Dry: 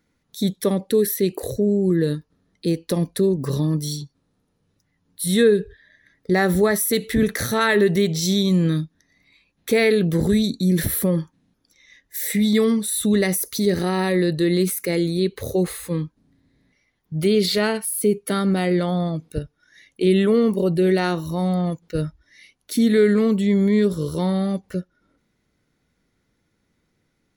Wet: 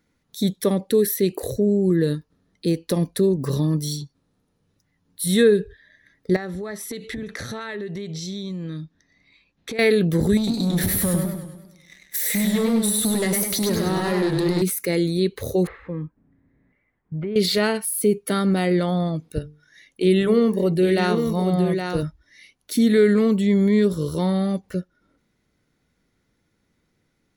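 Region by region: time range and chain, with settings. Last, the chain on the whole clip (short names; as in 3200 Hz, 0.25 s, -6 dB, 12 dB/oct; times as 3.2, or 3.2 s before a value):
6.36–9.79 LPF 6200 Hz + compressor 8:1, threshold -28 dBFS
10.37–14.62 sample leveller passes 2 + compressor, threshold -21 dBFS + warbling echo 0.101 s, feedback 52%, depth 125 cents, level -4 dB
15.67–17.36 LPF 2100 Hz 24 dB/oct + compressor 5:1, threshold -25 dBFS
19.39–22.03 notches 50/100/150/200/250/300/350/400/450 Hz + echo 0.817 s -6 dB
whole clip: dry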